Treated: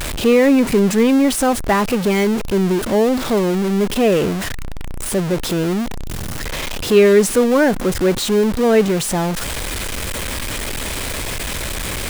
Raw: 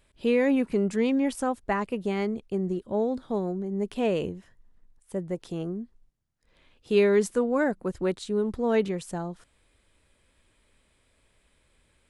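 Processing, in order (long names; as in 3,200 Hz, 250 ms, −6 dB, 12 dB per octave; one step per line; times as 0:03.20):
converter with a step at zero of −26.5 dBFS
level +8.5 dB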